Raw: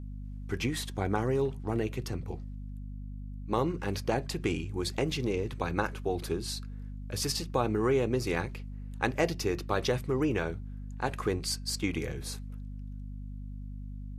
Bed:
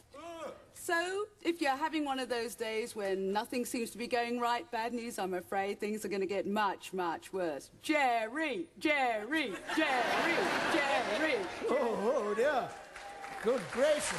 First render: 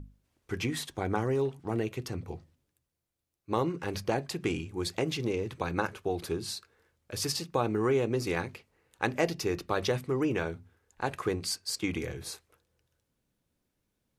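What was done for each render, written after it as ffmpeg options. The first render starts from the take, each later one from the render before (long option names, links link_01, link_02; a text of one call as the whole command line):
ffmpeg -i in.wav -af "bandreject=frequency=50:width_type=h:width=6,bandreject=frequency=100:width_type=h:width=6,bandreject=frequency=150:width_type=h:width=6,bandreject=frequency=200:width_type=h:width=6,bandreject=frequency=250:width_type=h:width=6" out.wav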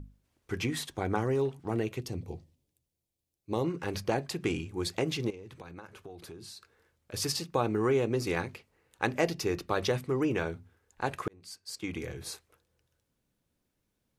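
ffmpeg -i in.wav -filter_complex "[0:a]asettb=1/sr,asplit=3[link_01][link_02][link_03];[link_01]atrim=end=2.014[link_04];[link_02]atrim=start=2.01:end=3.64,asetpts=PTS-STARTPTS,afade=type=in:duration=0.004:curve=qsin,afade=type=out:start_time=1.626:duration=0.004:curve=qsin,equalizer=frequency=1400:width_type=o:width=1.1:gain=-12.5[link_05];[link_03]atrim=start=3.636[link_06];[link_04][link_05]acrossfade=duration=0.004:curve1=hsin:curve2=qsin[link_07];[link_07][link_06]acrossfade=duration=0.004:curve1=qsin:curve2=hsin,asettb=1/sr,asplit=3[link_08][link_09][link_10];[link_08]atrim=end=5.304[link_11];[link_09]atrim=start=5.3:end=7.14,asetpts=PTS-STARTPTS,afade=type=in:duration=0.004:curve=qsin,afade=type=out:start_time=1.836:duration=0.004:curve=qsin,acompressor=threshold=-45dB:ratio=4:attack=3.2:release=140:knee=1:detection=peak[link_12];[link_10]atrim=start=7.136[link_13];[link_11][link_12]acrossfade=duration=0.004:curve1=hsin:curve2=qsin[link_14];[link_14][link_13]acrossfade=duration=0.004:curve1=qsin:curve2=hsin,asplit=2[link_15][link_16];[link_15]atrim=end=11.28,asetpts=PTS-STARTPTS,afade=type=out:start_time=11.276:duration=0.004:curve=hsin[link_17];[link_16]atrim=start=11.28,asetpts=PTS-STARTPTS,afade=type=in:duration=1.04[link_18];[link_17][link_18]concat=n=2:v=0:a=1" out.wav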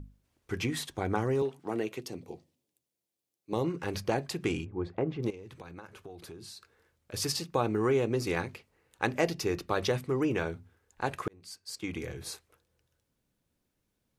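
ffmpeg -i in.wav -filter_complex "[0:a]asettb=1/sr,asplit=3[link_01][link_02][link_03];[link_01]atrim=end=1.424[link_04];[link_02]atrim=start=1.42:end=3.53,asetpts=PTS-STARTPTS,afade=type=in:duration=0.004:curve=qsin,afade=type=out:start_time=2.106:duration=0.004:curve=qsin,highpass=220[link_05];[link_03]atrim=start=3.526[link_06];[link_04][link_05]acrossfade=duration=0.004:curve1=hsin:curve2=qsin[link_07];[link_07][link_06]acrossfade=duration=0.004:curve1=qsin:curve2=hsin,asplit=3[link_08][link_09][link_10];[link_08]afade=type=out:start_time=4.64:duration=0.02[link_11];[link_09]lowpass=1200,afade=type=in:start_time=4.64:duration=0.02,afade=type=out:start_time=5.22:duration=0.02[link_12];[link_10]afade=type=in:start_time=5.22:duration=0.02[link_13];[link_11][link_12][link_13]amix=inputs=3:normalize=0" out.wav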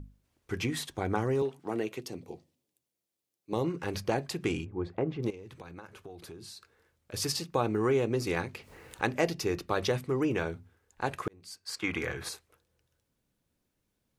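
ffmpeg -i in.wav -filter_complex "[0:a]asettb=1/sr,asplit=3[link_01][link_02][link_03];[link_01]atrim=end=8.554[link_04];[link_02]atrim=start=8.55:end=9.11,asetpts=PTS-STARTPTS,afade=type=in:duration=0.004:curve=qsin,afade=type=out:start_time=0.556:duration=0.004:curve=qsin,acompressor=mode=upward:threshold=-34dB:ratio=2.5:attack=3.2:release=140:knee=2.83:detection=peak[link_05];[link_03]atrim=start=9.106[link_06];[link_04][link_05]acrossfade=duration=0.004:curve1=hsin:curve2=qsin[link_07];[link_07][link_06]acrossfade=duration=0.004:curve1=qsin:curve2=hsin,asettb=1/sr,asplit=3[link_08][link_09][link_10];[link_08]atrim=end=11.654[link_11];[link_09]atrim=start=11.65:end=12.29,asetpts=PTS-STARTPTS,afade=type=in:duration=0.004:curve=qsin,afade=type=out:start_time=0.636:duration=0.004:curve=qsin,equalizer=frequency=1400:width=0.63:gain=13.5[link_12];[link_10]atrim=start=12.286[link_13];[link_11][link_12]acrossfade=duration=0.004:curve1=hsin:curve2=qsin[link_14];[link_14][link_13]acrossfade=duration=0.004:curve1=qsin:curve2=hsin" out.wav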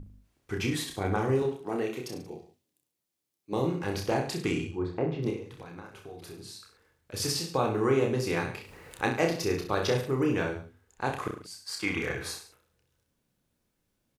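ffmpeg -i in.wav -af "aecho=1:1:30|63|99.3|139.2|183.2:0.631|0.398|0.251|0.158|0.1" out.wav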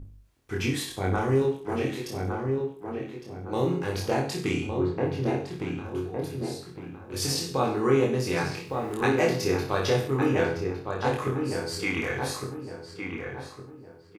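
ffmpeg -i in.wav -filter_complex "[0:a]asplit=2[link_01][link_02];[link_02]adelay=22,volume=-2.5dB[link_03];[link_01][link_03]amix=inputs=2:normalize=0,asplit=2[link_04][link_05];[link_05]adelay=1160,lowpass=frequency=1800:poles=1,volume=-4.5dB,asplit=2[link_06][link_07];[link_07]adelay=1160,lowpass=frequency=1800:poles=1,volume=0.37,asplit=2[link_08][link_09];[link_09]adelay=1160,lowpass=frequency=1800:poles=1,volume=0.37,asplit=2[link_10][link_11];[link_11]adelay=1160,lowpass=frequency=1800:poles=1,volume=0.37,asplit=2[link_12][link_13];[link_13]adelay=1160,lowpass=frequency=1800:poles=1,volume=0.37[link_14];[link_04][link_06][link_08][link_10][link_12][link_14]amix=inputs=6:normalize=0" out.wav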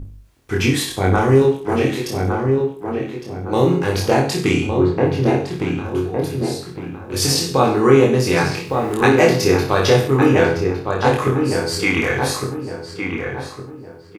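ffmpeg -i in.wav -af "volume=10.5dB,alimiter=limit=-1dB:level=0:latency=1" out.wav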